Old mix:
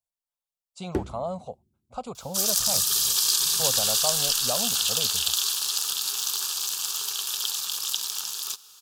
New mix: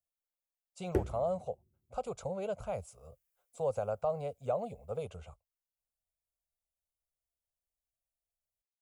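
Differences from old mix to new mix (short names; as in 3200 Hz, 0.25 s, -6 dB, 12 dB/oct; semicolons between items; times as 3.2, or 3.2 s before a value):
second sound: muted; master: add graphic EQ 250/500/1000/4000/8000 Hz -11/+5/-8/-11/-4 dB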